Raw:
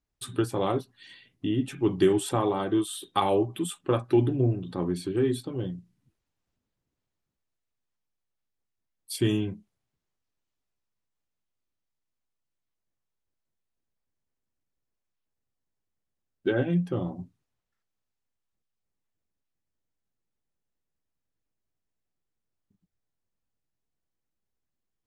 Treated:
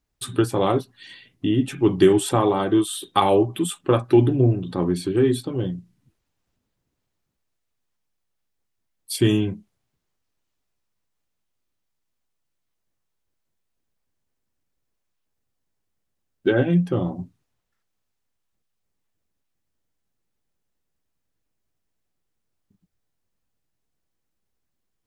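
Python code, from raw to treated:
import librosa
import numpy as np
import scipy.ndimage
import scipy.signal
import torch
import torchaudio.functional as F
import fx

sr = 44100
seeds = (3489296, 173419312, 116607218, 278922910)

y = F.gain(torch.from_numpy(x), 6.5).numpy()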